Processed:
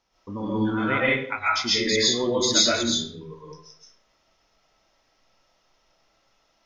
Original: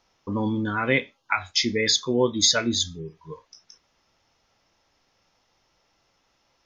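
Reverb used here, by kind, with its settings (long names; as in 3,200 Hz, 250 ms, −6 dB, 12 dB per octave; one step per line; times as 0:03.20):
comb and all-pass reverb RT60 0.61 s, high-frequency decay 0.7×, pre-delay 90 ms, DRR −7.5 dB
level −6.5 dB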